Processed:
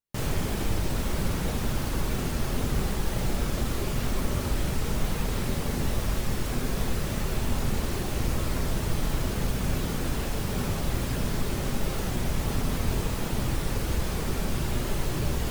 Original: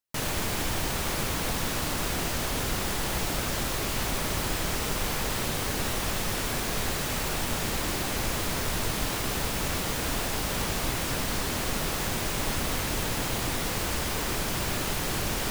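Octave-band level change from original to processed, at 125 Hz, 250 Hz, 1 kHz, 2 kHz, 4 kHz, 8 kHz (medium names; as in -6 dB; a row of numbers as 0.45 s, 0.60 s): +5.0 dB, +2.5 dB, -4.0 dB, -5.5 dB, -6.0 dB, -6.5 dB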